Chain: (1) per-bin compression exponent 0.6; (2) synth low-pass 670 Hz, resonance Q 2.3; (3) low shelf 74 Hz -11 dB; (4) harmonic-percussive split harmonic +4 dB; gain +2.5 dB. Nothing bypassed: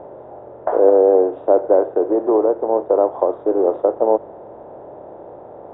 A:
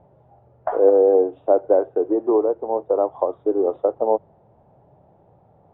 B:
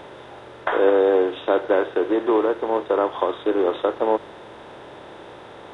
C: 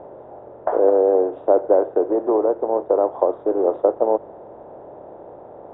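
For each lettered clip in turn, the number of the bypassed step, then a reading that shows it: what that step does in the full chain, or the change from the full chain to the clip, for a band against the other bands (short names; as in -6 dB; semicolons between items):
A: 1, momentary loudness spread change +1 LU; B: 2, momentary loudness spread change +16 LU; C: 4, momentary loudness spread change -2 LU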